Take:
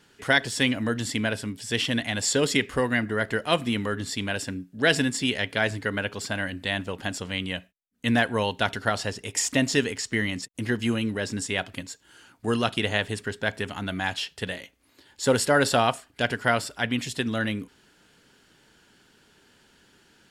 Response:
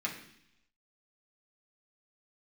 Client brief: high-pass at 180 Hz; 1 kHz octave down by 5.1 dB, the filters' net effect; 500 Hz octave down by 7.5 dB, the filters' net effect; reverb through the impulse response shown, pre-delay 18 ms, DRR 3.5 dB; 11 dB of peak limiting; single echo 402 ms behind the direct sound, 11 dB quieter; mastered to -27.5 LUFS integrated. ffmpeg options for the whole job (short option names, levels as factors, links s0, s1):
-filter_complex "[0:a]highpass=180,equalizer=f=500:t=o:g=-8,equalizer=f=1000:t=o:g=-4.5,alimiter=limit=0.119:level=0:latency=1,aecho=1:1:402:0.282,asplit=2[s0][s1];[1:a]atrim=start_sample=2205,adelay=18[s2];[s1][s2]afir=irnorm=-1:irlink=0,volume=0.398[s3];[s0][s3]amix=inputs=2:normalize=0,volume=1.41"